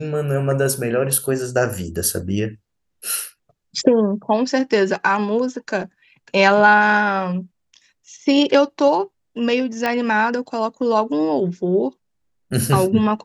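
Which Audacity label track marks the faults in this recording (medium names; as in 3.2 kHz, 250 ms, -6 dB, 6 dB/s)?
9.860000	9.860000	pop -8 dBFS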